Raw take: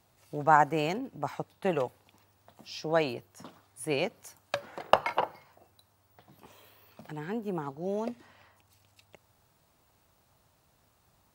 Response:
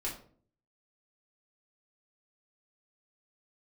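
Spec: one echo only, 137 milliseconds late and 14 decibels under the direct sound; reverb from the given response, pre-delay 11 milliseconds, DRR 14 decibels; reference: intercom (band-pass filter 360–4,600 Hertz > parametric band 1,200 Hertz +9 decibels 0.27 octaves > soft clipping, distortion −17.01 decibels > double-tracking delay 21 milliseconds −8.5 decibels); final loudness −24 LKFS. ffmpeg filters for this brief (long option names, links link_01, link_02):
-filter_complex "[0:a]aecho=1:1:137:0.2,asplit=2[link_01][link_02];[1:a]atrim=start_sample=2205,adelay=11[link_03];[link_02][link_03]afir=irnorm=-1:irlink=0,volume=-16.5dB[link_04];[link_01][link_04]amix=inputs=2:normalize=0,highpass=360,lowpass=4600,equalizer=frequency=1200:width_type=o:width=0.27:gain=9,asoftclip=threshold=-6.5dB,asplit=2[link_05][link_06];[link_06]adelay=21,volume=-8.5dB[link_07];[link_05][link_07]amix=inputs=2:normalize=0,volume=6dB"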